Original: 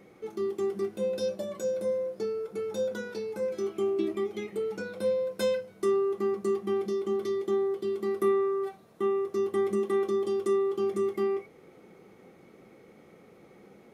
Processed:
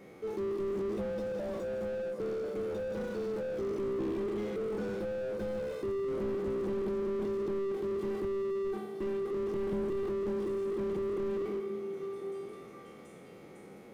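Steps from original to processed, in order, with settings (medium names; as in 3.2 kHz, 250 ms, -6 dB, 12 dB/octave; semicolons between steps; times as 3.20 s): spectral sustain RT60 1.11 s; repeats whose band climbs or falls 518 ms, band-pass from 180 Hz, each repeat 1.4 oct, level -8 dB; slew-rate limiter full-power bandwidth 9.7 Hz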